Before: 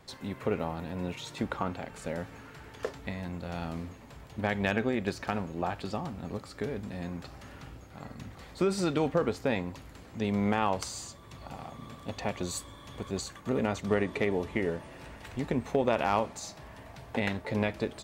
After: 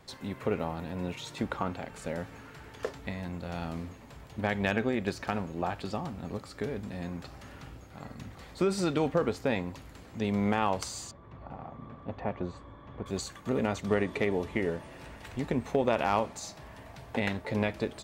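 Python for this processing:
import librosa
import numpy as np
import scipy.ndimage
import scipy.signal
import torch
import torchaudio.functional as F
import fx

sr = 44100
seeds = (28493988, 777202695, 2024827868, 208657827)

y = fx.lowpass(x, sr, hz=1500.0, slope=12, at=(11.11, 13.06))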